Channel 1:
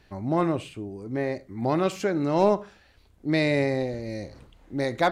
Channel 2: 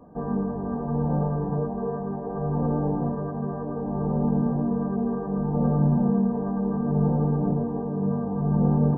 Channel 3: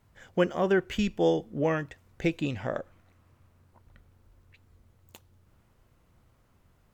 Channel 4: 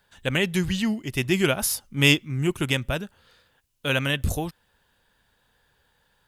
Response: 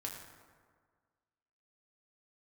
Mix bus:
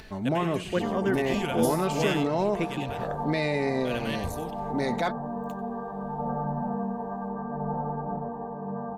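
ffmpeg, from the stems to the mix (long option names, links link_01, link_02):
-filter_complex "[0:a]acompressor=mode=upward:threshold=-40dB:ratio=2.5,volume=1dB,asplit=2[link_01][link_02];[1:a]lowshelf=frequency=530:width_type=q:width=1.5:gain=-11.5,adelay=650,volume=0.5dB[link_03];[2:a]adelay=350,volume=-3.5dB,asplit=2[link_04][link_05];[link_05]volume=-21dB[link_06];[3:a]volume=-8.5dB,asplit=2[link_07][link_08];[link_08]volume=-12.5dB[link_09];[link_02]apad=whole_len=276658[link_10];[link_07][link_10]sidechaincompress=threshold=-25dB:ratio=8:attack=45:release=981[link_11];[link_01][link_03]amix=inputs=2:normalize=0,aecho=1:1:4.6:0.43,alimiter=limit=-17dB:level=0:latency=1:release=106,volume=0dB[link_12];[link_06][link_09]amix=inputs=2:normalize=0,aecho=0:1:93:1[link_13];[link_04][link_11][link_12][link_13]amix=inputs=4:normalize=0"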